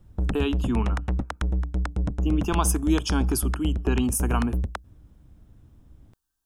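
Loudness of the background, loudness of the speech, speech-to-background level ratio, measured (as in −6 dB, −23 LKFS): −28.5 LKFS, −27.5 LKFS, 1.0 dB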